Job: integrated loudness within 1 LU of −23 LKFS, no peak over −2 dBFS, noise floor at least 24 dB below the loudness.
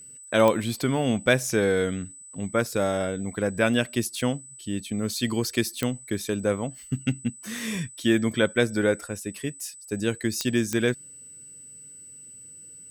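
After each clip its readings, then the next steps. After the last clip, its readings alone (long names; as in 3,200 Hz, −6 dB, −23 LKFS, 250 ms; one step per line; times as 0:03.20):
number of clicks 4; interfering tone 8,000 Hz; level of the tone −43 dBFS; integrated loudness −26.0 LKFS; sample peak −7.0 dBFS; target loudness −23.0 LKFS
→ click removal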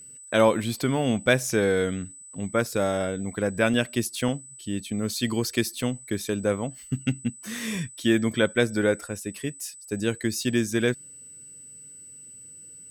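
number of clicks 0; interfering tone 8,000 Hz; level of the tone −43 dBFS
→ notch filter 8,000 Hz, Q 30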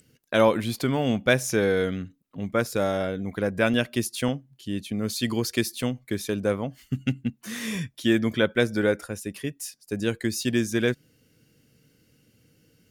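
interfering tone none found; integrated loudness −26.5 LKFS; sample peak −7.0 dBFS; target loudness −23.0 LKFS
→ level +3.5 dB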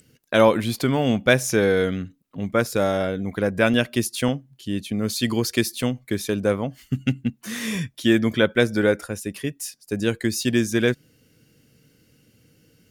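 integrated loudness −23.0 LKFS; sample peak −3.5 dBFS; background noise floor −61 dBFS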